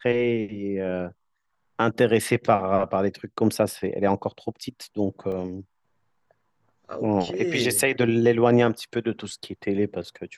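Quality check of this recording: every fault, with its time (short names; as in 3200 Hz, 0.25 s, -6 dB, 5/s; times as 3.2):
5.32 gap 2.2 ms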